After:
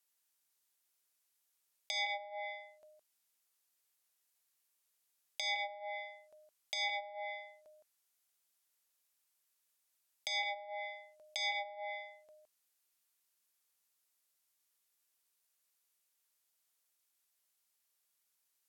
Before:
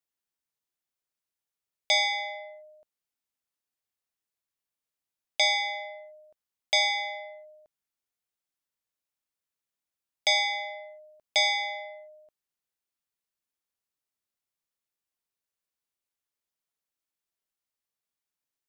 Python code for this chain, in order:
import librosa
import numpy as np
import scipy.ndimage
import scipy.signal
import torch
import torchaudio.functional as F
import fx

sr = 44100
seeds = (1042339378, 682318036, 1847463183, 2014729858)

y = x + 10.0 ** (-9.0 / 20.0) * np.pad(x, (int(164 * sr / 1000.0), 0))[:len(x)]
y = fx.over_compress(y, sr, threshold_db=-29.0, ratio=-0.5)
y = fx.low_shelf(y, sr, hz=340.0, db=-11.5)
y = fx.env_lowpass_down(y, sr, base_hz=330.0, full_db=-25.5)
y = fx.high_shelf(y, sr, hz=5900.0, db=9.5)